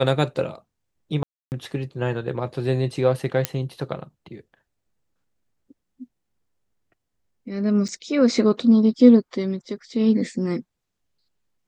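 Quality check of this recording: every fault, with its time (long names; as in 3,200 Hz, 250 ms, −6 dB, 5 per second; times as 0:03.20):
0:01.23–0:01.52: drop-out 289 ms
0:03.45: click −4 dBFS
0:07.88–0:07.89: drop-out 6.4 ms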